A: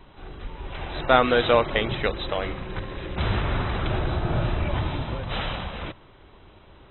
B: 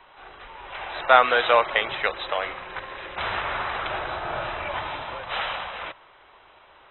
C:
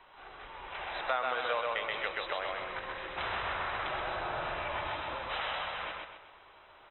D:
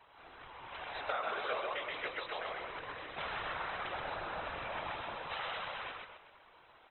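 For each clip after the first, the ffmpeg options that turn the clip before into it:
-filter_complex "[0:a]acrossover=split=580 3500:gain=0.0708 1 0.178[a][b][c];[a][b][c]amix=inputs=3:normalize=0,volume=5dB"
-af "aecho=1:1:129|258|387|516|645:0.708|0.29|0.119|0.0488|0.02,acompressor=threshold=-26dB:ratio=3,volume=-6dB"
-af "afftfilt=real='hypot(re,im)*cos(2*PI*random(0))':imag='hypot(re,im)*sin(2*PI*random(1))':win_size=512:overlap=0.75,volume=1.5dB"

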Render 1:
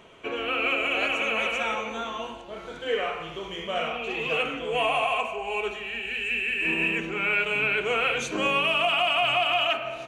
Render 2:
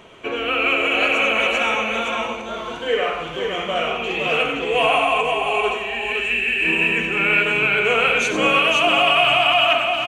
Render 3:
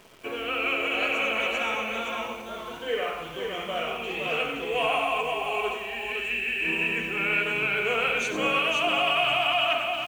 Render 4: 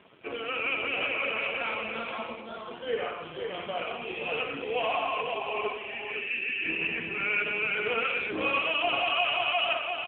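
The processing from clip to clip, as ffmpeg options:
-af "aecho=1:1:93|518:0.355|0.596,volume=6dB"
-af "acrusher=bits=8:dc=4:mix=0:aa=0.000001,volume=-8dB"
-af "volume=-1dB" -ar 8000 -c:a libopencore_amrnb -b:a 7400

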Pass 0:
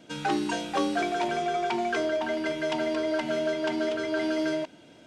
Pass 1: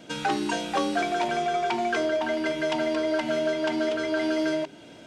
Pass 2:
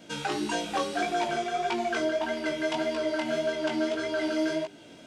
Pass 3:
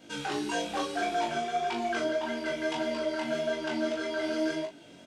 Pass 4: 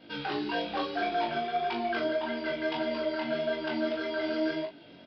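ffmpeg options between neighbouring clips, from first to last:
-filter_complex "[0:a]bandreject=f=50:t=h:w=6,bandreject=f=100:t=h:w=6,bandreject=f=150:t=h:w=6,bandreject=f=200:t=h:w=6,bandreject=f=250:t=h:w=6,bandreject=f=300:t=h:w=6,bandreject=f=350:t=h:w=6,bandreject=f=400:t=h:w=6,asplit=2[a][b];[b]acompressor=threshold=-37dB:ratio=6,volume=0dB[c];[a][c]amix=inputs=2:normalize=0"
-af "flanger=delay=17:depth=5.2:speed=1.7,highshelf=f=5.4k:g=4.5"
-filter_complex "[0:a]flanger=delay=2.4:depth=5:regen=-61:speed=1.1:shape=sinusoidal,asplit=2[a][b];[b]aecho=0:1:21|38:0.562|0.501[c];[a][c]amix=inputs=2:normalize=0"
-af "aresample=11025,aresample=44100"

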